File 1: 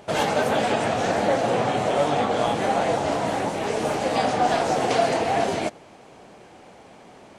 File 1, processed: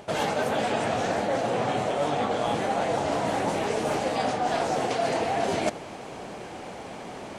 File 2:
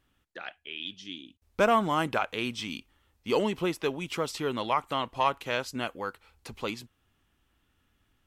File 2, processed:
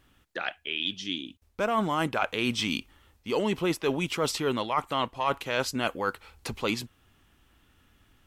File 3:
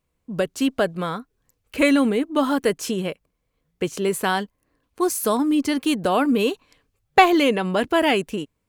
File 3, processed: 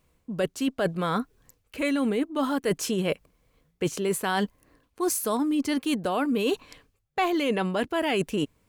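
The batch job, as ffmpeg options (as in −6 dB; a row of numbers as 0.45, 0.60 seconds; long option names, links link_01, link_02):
-af "areverse,acompressor=threshold=-32dB:ratio=8,areverse,volume=8.5dB"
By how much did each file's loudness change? −4.0, +0.5, −6.0 LU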